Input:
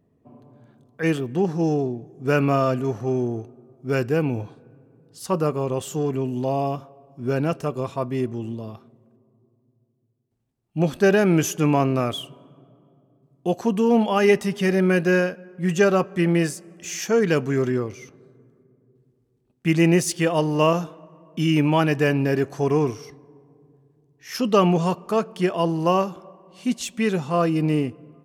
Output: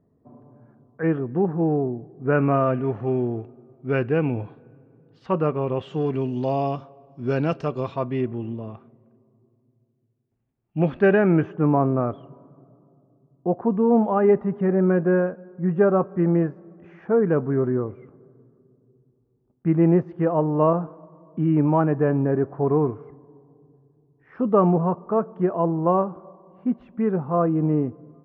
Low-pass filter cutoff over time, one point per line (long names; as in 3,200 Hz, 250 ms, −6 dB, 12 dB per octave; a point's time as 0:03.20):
low-pass filter 24 dB per octave
0:02.13 1,600 Hz
0:03.08 2,800 Hz
0:05.76 2,800 Hz
0:06.27 4,800 Hz
0:07.80 4,800 Hz
0:08.40 2,600 Hz
0:10.98 2,600 Hz
0:11.70 1,300 Hz